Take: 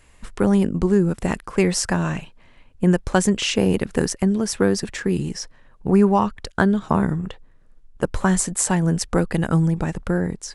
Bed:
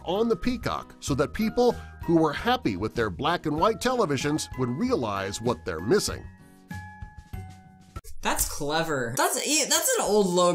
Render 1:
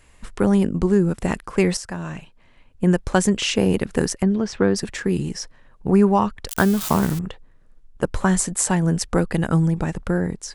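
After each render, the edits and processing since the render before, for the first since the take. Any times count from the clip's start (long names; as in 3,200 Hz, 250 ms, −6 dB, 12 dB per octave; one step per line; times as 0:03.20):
0:01.77–0:02.99: fade in, from −12 dB
0:04.23–0:04.76: Bessel low-pass filter 4,000 Hz, order 4
0:06.48–0:07.19: spike at every zero crossing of −16.5 dBFS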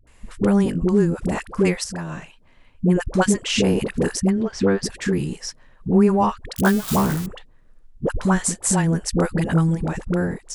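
all-pass dispersion highs, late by 72 ms, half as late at 520 Hz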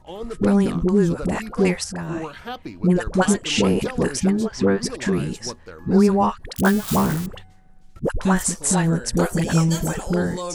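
mix in bed −8.5 dB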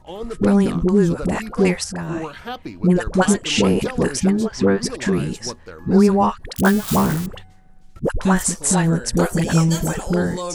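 level +2 dB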